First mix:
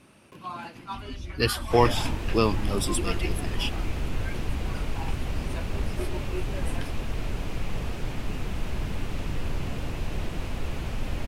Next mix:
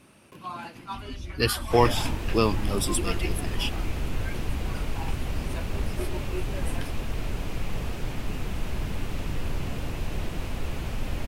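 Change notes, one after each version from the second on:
master: add high-shelf EQ 12,000 Hz +7.5 dB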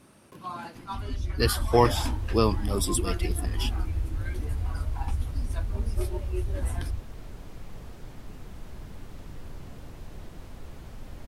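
first sound +7.0 dB
second sound −11.5 dB
master: add parametric band 2,600 Hz −7 dB 0.57 octaves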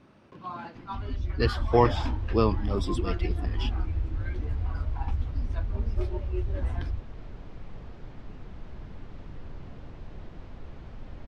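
master: add high-frequency loss of the air 190 metres

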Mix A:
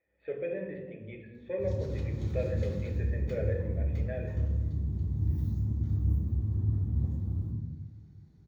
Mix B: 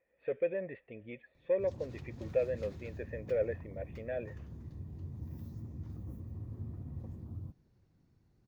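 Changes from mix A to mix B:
speech +3.5 dB
reverb: off

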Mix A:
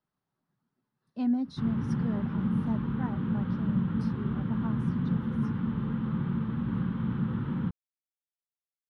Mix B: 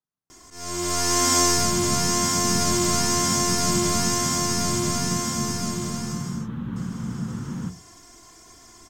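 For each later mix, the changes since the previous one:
speech −10.5 dB
first sound: unmuted
master: remove moving average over 6 samples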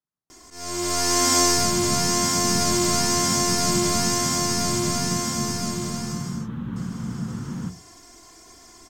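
first sound: send −9.0 dB

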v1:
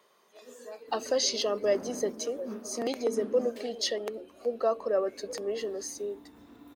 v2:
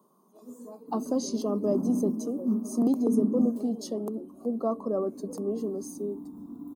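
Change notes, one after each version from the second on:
master: add drawn EQ curve 100 Hz 0 dB, 170 Hz +15 dB, 270 Hz +13 dB, 500 Hz −5 dB, 1,100 Hz +1 dB, 1,900 Hz −29 dB, 5,800 Hz −10 dB, 9,700 Hz +2 dB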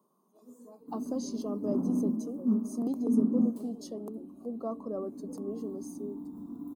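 speech −7.5 dB

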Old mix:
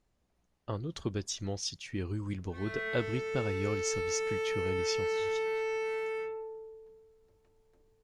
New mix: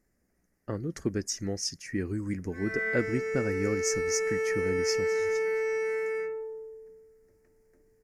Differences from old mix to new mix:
speech: remove low-pass filter 8,600 Hz 12 dB per octave
master: add drawn EQ curve 110 Hz 0 dB, 240 Hz +7 dB, 470 Hz +4 dB, 1,000 Hz −5 dB, 1,900 Hz +10 dB, 3,500 Hz −18 dB, 5,100 Hz +4 dB

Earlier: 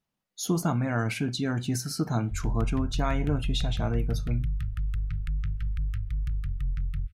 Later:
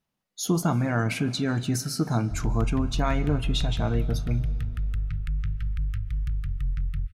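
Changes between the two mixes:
speech: send on
background: send +9.5 dB

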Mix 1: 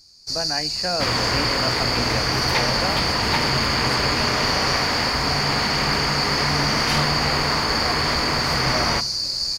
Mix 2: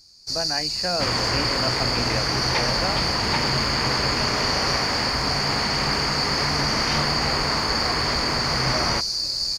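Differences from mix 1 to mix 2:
second sound: add high-frequency loss of the air 130 metres
reverb: off

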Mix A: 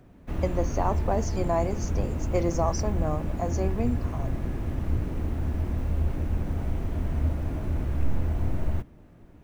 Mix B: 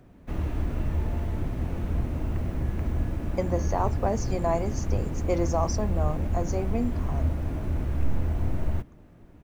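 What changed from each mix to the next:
speech: entry +2.95 s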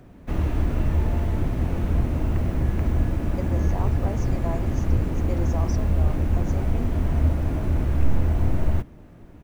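speech −7.5 dB
background +5.5 dB

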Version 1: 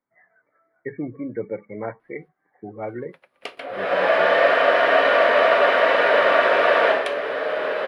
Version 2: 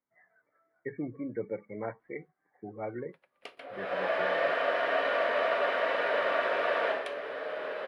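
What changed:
speech −6.5 dB
background −12.0 dB

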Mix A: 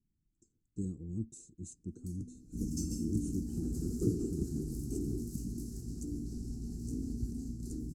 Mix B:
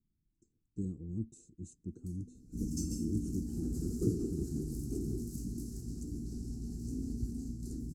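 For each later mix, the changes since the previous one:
speech: add high-shelf EQ 3,700 Hz −8.5 dB
first sound −5.0 dB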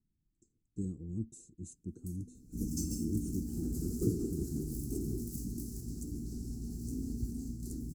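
second sound: add high-shelf EQ 9,800 Hz −7.5 dB
master: remove high-frequency loss of the air 54 metres

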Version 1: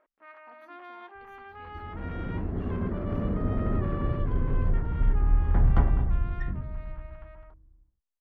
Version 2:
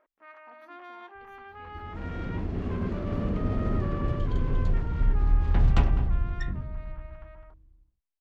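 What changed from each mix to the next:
first sound: remove low-pass filter 4,500 Hz
second sound: remove Savitzky-Golay smoothing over 41 samples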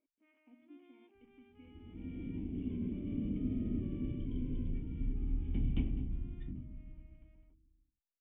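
speech +7.0 dB
second sound: remove high-frequency loss of the air 66 metres
master: add formant resonators in series i

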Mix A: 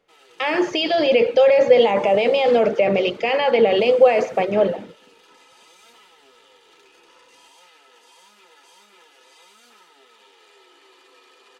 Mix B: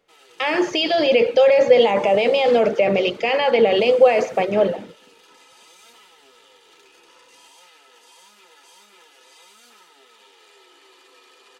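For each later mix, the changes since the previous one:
master: add high-shelf EQ 4,600 Hz +5 dB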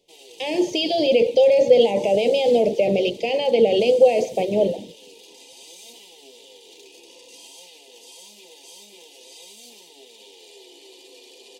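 background +8.0 dB
master: add Butterworth band-reject 1,400 Hz, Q 0.61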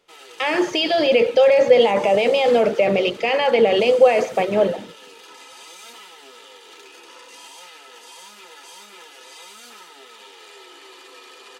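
master: remove Butterworth band-reject 1,400 Hz, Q 0.61

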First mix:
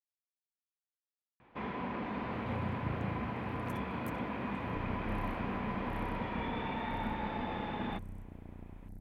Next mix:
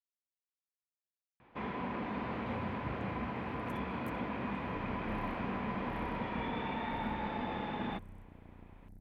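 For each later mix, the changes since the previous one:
second sound −6.0 dB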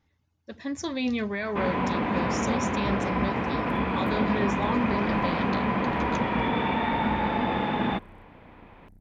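speech: unmuted
first sound +11.5 dB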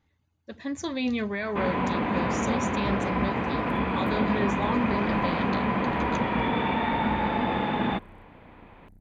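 master: add notch filter 5,400 Hz, Q 6.6

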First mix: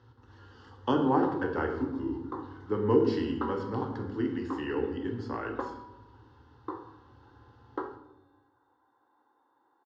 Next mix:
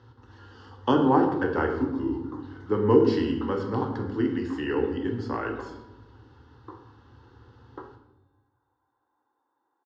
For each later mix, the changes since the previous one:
speech +5.0 dB
second sound −6.5 dB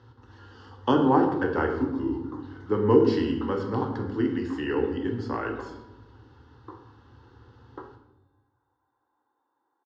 nothing changed

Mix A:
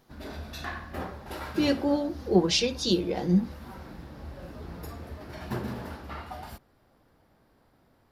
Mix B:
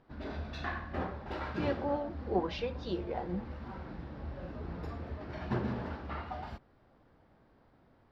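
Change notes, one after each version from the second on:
speech: add resonant band-pass 1,000 Hz, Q 1.2
master: add high-frequency loss of the air 210 metres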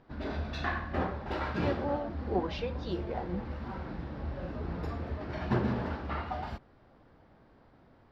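background +4.5 dB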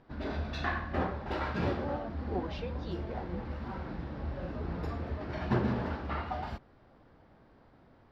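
speech −5.0 dB

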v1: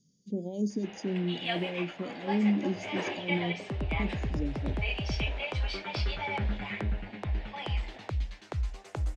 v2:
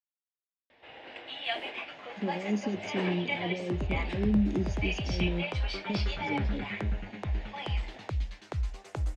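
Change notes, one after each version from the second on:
speech: entry +1.90 s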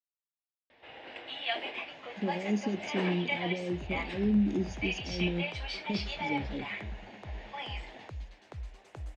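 second sound −10.0 dB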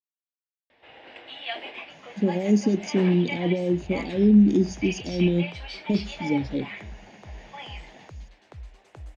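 speech +10.5 dB

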